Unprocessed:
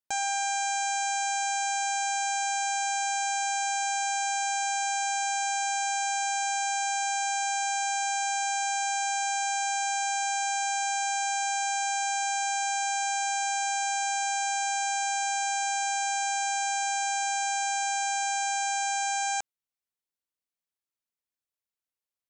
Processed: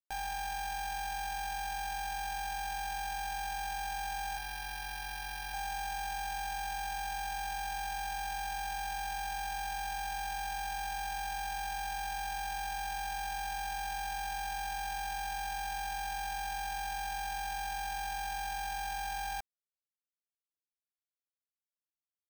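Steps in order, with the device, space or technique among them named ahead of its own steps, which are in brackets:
0:04.37–0:05.54: Butterworth high-pass 970 Hz 48 dB per octave
early 8-bit sampler (sample-rate reduction 7,200 Hz, jitter 0%; bit reduction 8 bits)
level −8.5 dB

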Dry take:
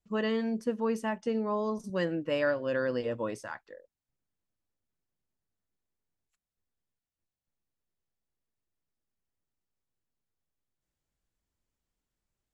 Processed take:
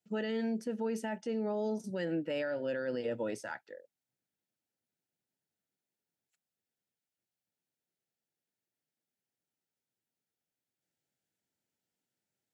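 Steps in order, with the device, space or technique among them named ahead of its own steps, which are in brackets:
0:01.89–0:03.15: notch filter 6,200 Hz, Q 5.6
high-pass filter 86 Hz 24 dB per octave
PA system with an anti-feedback notch (high-pass filter 140 Hz 12 dB per octave; Butterworth band-reject 1,100 Hz, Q 3.4; brickwall limiter −27 dBFS, peak gain reduction 10 dB)

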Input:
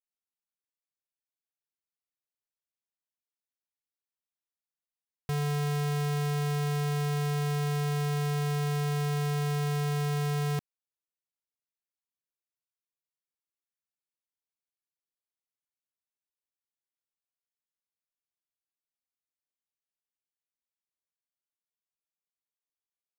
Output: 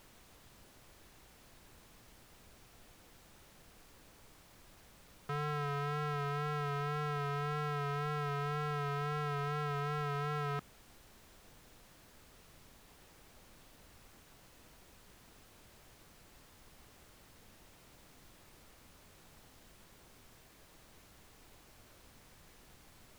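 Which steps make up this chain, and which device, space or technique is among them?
horn gramophone (band-pass filter 180–3,400 Hz; parametric band 1,300 Hz +10.5 dB 0.49 octaves; tape wow and flutter 40 cents; pink noise bed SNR 17 dB)
level −5 dB

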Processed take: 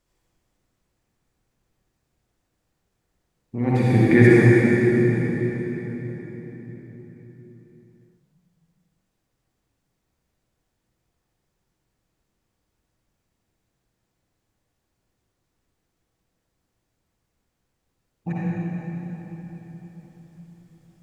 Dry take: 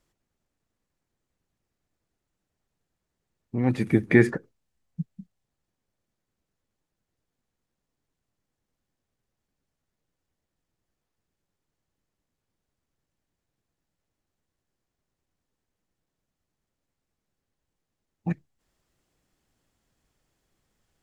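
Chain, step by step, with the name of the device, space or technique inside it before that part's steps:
cathedral (convolution reverb RT60 4.5 s, pre-delay 48 ms, DRR −9 dB)
level −1.5 dB

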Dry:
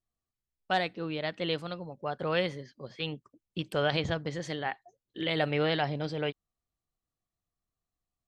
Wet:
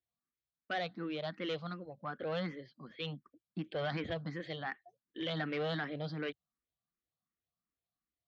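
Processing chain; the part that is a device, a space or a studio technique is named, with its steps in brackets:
barber-pole phaser into a guitar amplifier (frequency shifter mixed with the dry sound +2.7 Hz; soft clipping −28 dBFS, distortion −13 dB; loudspeaker in its box 85–4,100 Hz, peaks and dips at 89 Hz −10 dB, 130 Hz −4 dB, 400 Hz −6 dB, 570 Hz −3 dB, 890 Hz −7 dB, 2,700 Hz −6 dB)
level +1 dB

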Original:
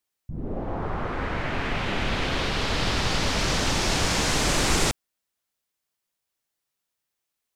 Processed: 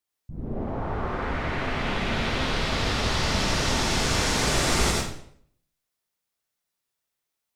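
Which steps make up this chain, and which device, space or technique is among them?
bathroom (convolution reverb RT60 0.65 s, pre-delay 74 ms, DRR −2 dB)
level −4 dB

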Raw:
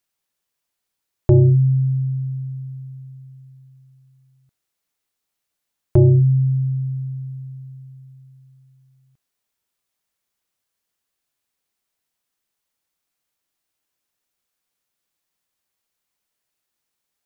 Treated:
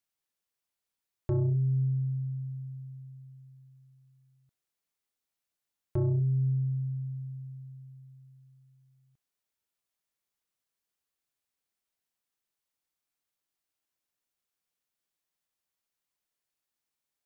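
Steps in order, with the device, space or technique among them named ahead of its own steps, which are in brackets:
soft clipper into limiter (soft clipping −8 dBFS, distortion −20 dB; brickwall limiter −15 dBFS, peak gain reduction 5.5 dB)
level −8.5 dB

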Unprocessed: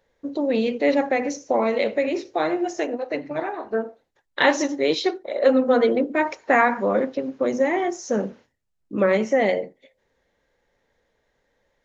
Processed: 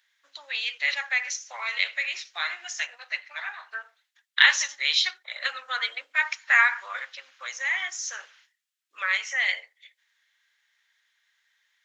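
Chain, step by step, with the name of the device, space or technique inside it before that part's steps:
headphones lying on a table (high-pass filter 1,500 Hz 24 dB per octave; parametric band 3,300 Hz +4 dB 0.4 octaves)
level +5 dB

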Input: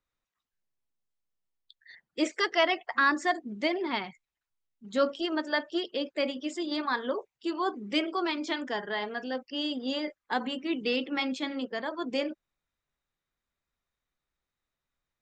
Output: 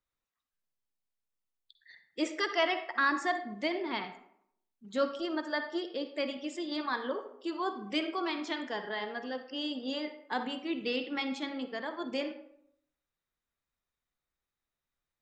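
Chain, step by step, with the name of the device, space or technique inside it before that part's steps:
0:05.16–0:06.12: parametric band 2,800 Hz −5 dB 0.65 octaves
filtered reverb send (on a send: high-pass filter 300 Hz + low-pass filter 6,600 Hz + convolution reverb RT60 0.70 s, pre-delay 46 ms, DRR 8 dB)
on the sum: level −4 dB

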